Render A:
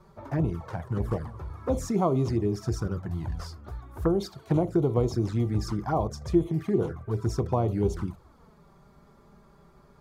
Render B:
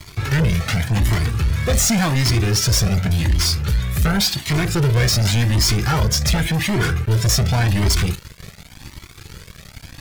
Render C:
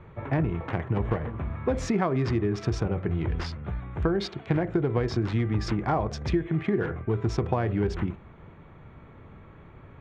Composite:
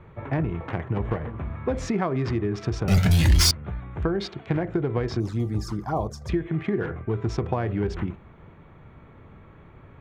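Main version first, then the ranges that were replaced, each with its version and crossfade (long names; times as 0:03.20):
C
0:02.88–0:03.51: punch in from B
0:05.20–0:06.29: punch in from A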